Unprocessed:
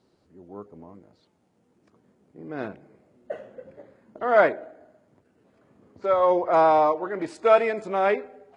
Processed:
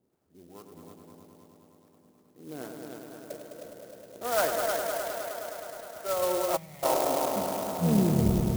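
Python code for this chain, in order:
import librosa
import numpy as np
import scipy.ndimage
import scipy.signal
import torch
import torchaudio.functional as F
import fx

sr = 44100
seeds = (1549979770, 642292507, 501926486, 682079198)

p1 = fx.tape_stop_end(x, sr, length_s=1.94)
p2 = fx.high_shelf(p1, sr, hz=4500.0, db=-11.0)
p3 = fx.level_steps(p2, sr, step_db=13)
p4 = p2 + F.gain(torch.from_numpy(p3), -2.0).numpy()
p5 = fx.echo_split(p4, sr, split_hz=500.0, low_ms=120, high_ms=531, feedback_pct=52, wet_db=-12.5)
p6 = fx.harmonic_tremolo(p5, sr, hz=2.4, depth_pct=70, crossover_hz=660.0)
p7 = fx.echo_heads(p6, sr, ms=104, heads='all three', feedback_pct=72, wet_db=-8.5)
p8 = fx.spec_box(p7, sr, start_s=6.57, length_s=0.26, low_hz=230.0, high_hz=1800.0, gain_db=-28)
p9 = fx.clock_jitter(p8, sr, seeds[0], jitter_ms=0.081)
y = F.gain(torch.from_numpy(p9), -7.5).numpy()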